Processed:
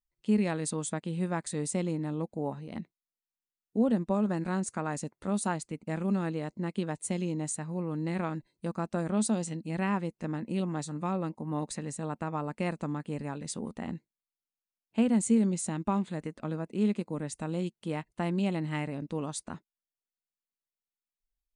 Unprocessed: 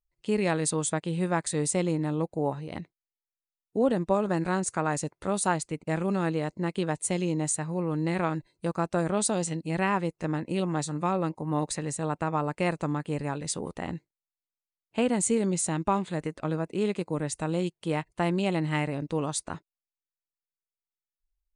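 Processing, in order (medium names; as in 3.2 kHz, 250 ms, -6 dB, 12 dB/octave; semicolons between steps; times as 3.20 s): peaking EQ 220 Hz +12 dB 0.41 oct; trim -6.5 dB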